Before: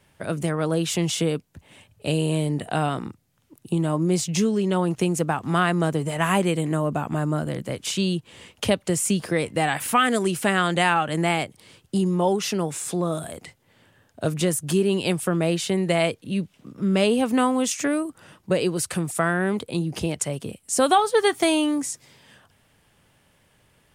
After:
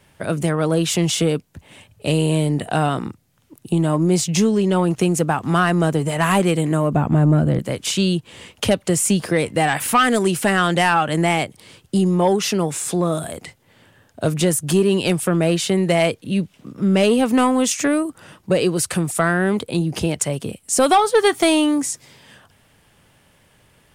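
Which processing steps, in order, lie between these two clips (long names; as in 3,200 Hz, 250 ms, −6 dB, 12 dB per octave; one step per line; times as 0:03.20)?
0:06.94–0:07.59: spectral tilt −2.5 dB per octave
soft clipping −11 dBFS, distortion −20 dB
level +5.5 dB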